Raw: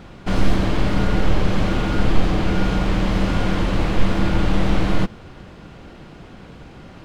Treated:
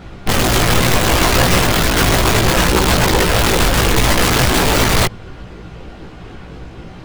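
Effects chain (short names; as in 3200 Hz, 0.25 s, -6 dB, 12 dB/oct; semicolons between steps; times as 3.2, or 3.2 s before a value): wrapped overs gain 14.5 dB; chorus voices 6, 0.66 Hz, delay 17 ms, depth 1.6 ms; gain +8.5 dB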